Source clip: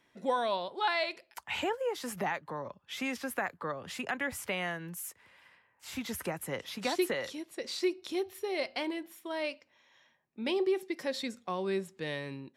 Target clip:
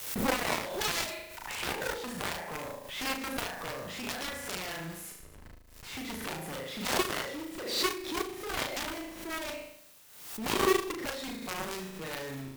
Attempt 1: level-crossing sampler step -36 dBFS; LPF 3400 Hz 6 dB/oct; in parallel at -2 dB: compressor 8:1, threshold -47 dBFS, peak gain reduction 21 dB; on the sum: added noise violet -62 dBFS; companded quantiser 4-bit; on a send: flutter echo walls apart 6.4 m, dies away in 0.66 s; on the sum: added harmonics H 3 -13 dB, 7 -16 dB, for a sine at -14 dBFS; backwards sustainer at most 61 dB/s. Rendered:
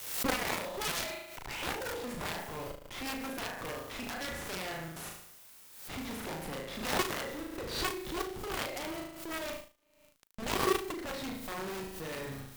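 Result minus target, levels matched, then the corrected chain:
compressor: peak gain reduction +8 dB; level-crossing sampler: distortion +11 dB
level-crossing sampler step -46.5 dBFS; LPF 3400 Hz 6 dB/oct; in parallel at -2 dB: compressor 8:1, threshold -38 dBFS, peak gain reduction 13.5 dB; on the sum: added noise violet -62 dBFS; companded quantiser 4-bit; on a send: flutter echo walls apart 6.4 m, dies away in 0.66 s; on the sum: added harmonics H 3 -13 dB, 7 -16 dB, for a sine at -14 dBFS; backwards sustainer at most 61 dB/s

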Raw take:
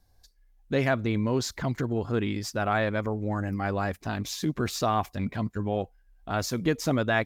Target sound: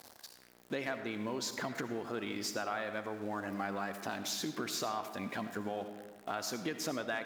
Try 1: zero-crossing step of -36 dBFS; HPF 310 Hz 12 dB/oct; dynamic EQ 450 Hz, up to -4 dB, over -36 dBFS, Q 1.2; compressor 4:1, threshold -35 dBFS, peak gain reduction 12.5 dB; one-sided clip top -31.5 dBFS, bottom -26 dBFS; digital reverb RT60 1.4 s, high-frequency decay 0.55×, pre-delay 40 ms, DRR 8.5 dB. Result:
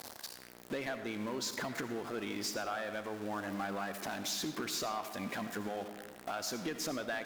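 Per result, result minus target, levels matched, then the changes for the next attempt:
one-sided clip: distortion +15 dB; zero-crossing step: distortion +7 dB
change: one-sided clip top -24.5 dBFS, bottom -26 dBFS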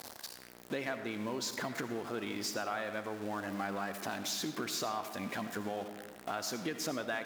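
zero-crossing step: distortion +7 dB
change: zero-crossing step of -44 dBFS

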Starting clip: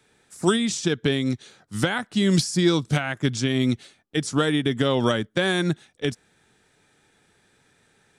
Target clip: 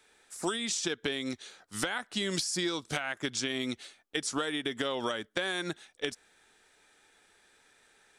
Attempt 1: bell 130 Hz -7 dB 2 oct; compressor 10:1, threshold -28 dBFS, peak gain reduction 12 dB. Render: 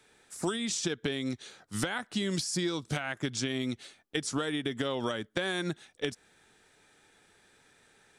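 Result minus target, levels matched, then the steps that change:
125 Hz band +6.5 dB
change: bell 130 Hz -18 dB 2 oct

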